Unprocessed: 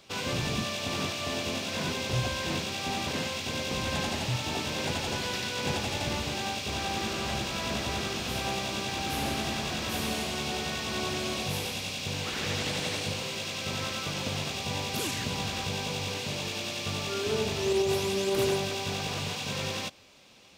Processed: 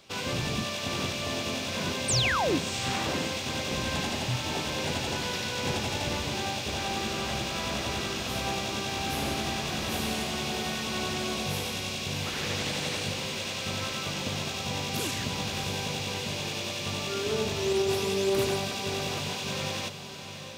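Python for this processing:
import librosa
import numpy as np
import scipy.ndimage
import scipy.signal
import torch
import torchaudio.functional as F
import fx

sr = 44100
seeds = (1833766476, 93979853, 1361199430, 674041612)

y = fx.spec_paint(x, sr, seeds[0], shape='fall', start_s=2.08, length_s=0.51, low_hz=230.0, high_hz=9200.0, level_db=-27.0)
y = fx.echo_diffused(y, sr, ms=674, feedback_pct=42, wet_db=-9)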